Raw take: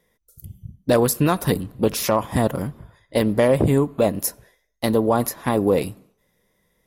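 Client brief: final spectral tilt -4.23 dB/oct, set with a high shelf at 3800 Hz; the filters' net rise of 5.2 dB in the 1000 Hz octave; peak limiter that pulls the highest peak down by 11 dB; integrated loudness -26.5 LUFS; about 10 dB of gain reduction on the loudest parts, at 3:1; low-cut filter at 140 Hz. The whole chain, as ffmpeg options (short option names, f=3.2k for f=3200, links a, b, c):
-af "highpass=140,equalizer=f=1k:t=o:g=6,highshelf=f=3.8k:g=7,acompressor=threshold=-25dB:ratio=3,volume=5.5dB,alimiter=limit=-14dB:level=0:latency=1"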